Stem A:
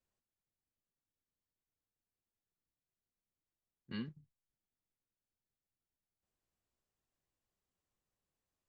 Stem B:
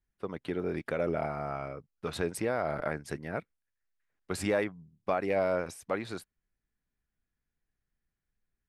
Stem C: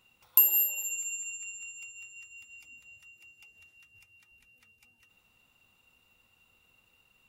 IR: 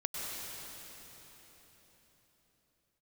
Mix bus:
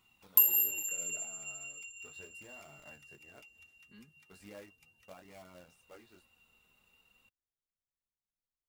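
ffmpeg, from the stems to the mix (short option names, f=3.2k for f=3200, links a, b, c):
-filter_complex "[0:a]volume=-12.5dB[a];[1:a]flanger=delay=20:depth=2.9:speed=0.43,acrusher=bits=2:mode=log:mix=0:aa=0.000001,volume=-16.5dB[b];[2:a]volume=1.5dB[c];[a][b][c]amix=inputs=3:normalize=0,flanger=delay=0.9:depth=4:regen=-47:speed=0.37:shape=sinusoidal"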